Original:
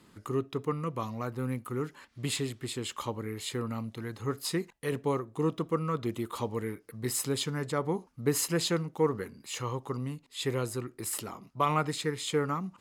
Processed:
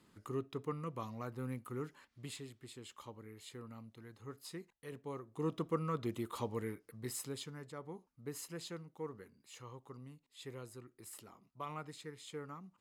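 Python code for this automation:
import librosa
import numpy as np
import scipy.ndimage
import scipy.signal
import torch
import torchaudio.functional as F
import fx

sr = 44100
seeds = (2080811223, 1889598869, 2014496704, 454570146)

y = fx.gain(x, sr, db=fx.line((1.93, -8.5), (2.39, -16.0), (5.05, -16.0), (5.56, -6.0), (6.7, -6.0), (7.72, -17.0)))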